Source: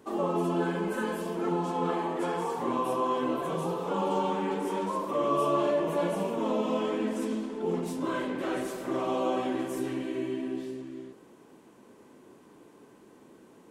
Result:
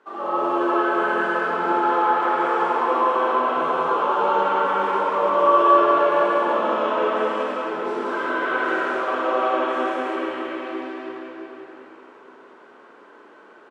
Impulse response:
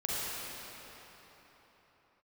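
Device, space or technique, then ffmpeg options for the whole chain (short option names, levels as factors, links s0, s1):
station announcement: -filter_complex "[0:a]highpass=490,lowpass=3500,equalizer=f=1400:t=o:w=0.54:g=10.5,aecho=1:1:183.7|239.1:0.794|0.316[s0];[1:a]atrim=start_sample=2205[s1];[s0][s1]afir=irnorm=-1:irlink=0"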